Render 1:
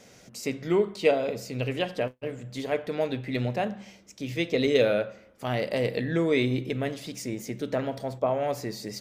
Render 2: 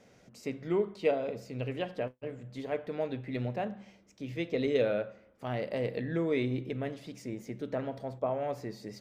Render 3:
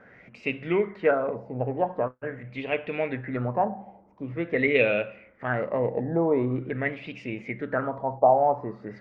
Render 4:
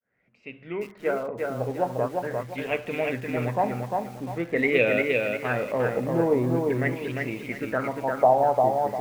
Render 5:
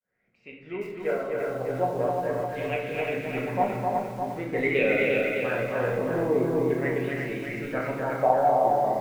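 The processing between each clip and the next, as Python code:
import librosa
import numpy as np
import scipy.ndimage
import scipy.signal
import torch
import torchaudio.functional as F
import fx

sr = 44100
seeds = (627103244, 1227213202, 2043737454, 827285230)

y1 = fx.high_shelf(x, sr, hz=3500.0, db=-11.5)
y1 = F.gain(torch.from_numpy(y1), -5.5).numpy()
y2 = fx.filter_lfo_lowpass(y1, sr, shape='sine', hz=0.45, low_hz=800.0, high_hz=2700.0, q=7.6)
y2 = F.gain(torch.from_numpy(y2), 4.5).numpy()
y3 = fx.fade_in_head(y2, sr, length_s=1.91)
y3 = fx.echo_crushed(y3, sr, ms=350, feedback_pct=35, bits=8, wet_db=-3)
y4 = y3 + 10.0 ** (-3.5 / 20.0) * np.pad(y3, (int(258 * sr / 1000.0), 0))[:len(y3)]
y4 = fx.room_shoebox(y4, sr, seeds[0], volume_m3=160.0, walls='mixed', distance_m=1.0)
y4 = F.gain(torch.from_numpy(y4), -6.0).numpy()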